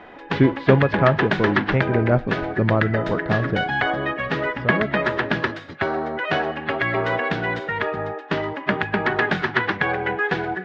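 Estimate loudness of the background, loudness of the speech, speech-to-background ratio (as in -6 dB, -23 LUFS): -23.5 LUFS, -22.0 LUFS, 1.5 dB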